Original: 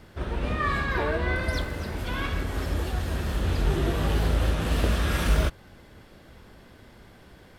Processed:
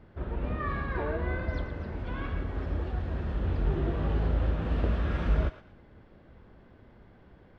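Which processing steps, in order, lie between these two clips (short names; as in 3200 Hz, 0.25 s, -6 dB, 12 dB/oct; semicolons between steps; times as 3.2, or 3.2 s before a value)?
tape spacing loss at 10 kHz 37 dB; thinning echo 0.114 s, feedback 32%, high-pass 760 Hz, level -11.5 dB; gain -3 dB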